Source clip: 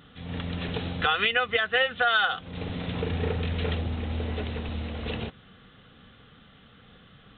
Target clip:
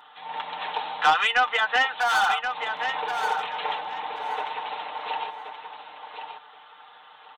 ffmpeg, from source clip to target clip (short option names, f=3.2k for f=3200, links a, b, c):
-filter_complex "[0:a]aecho=1:1:6.6:0.6,asettb=1/sr,asplit=3[a][b][c];[a]atrim=end=1.904[d];[b]atrim=start=1.9:end=2.82,asetpts=PTS-STARTPTS,afade=t=in:d=0.004:c=qsin,afade=t=out:st=0.916:d=0.004:c=qsin,asoftclip=type=hard:threshold=-24.5dB[e];[c]atrim=start=2.816[f];[d][e]acrossfade=d=0.004:c1=hsin:c2=qsin[g];[g][f]acrossfade=d=0.004:c1=qsin:c2=hsin,highpass=f=880:t=q:w=10,asoftclip=type=tanh:threshold=-12dB,aecho=1:1:1077|2154|3231:0.398|0.0756|0.0144"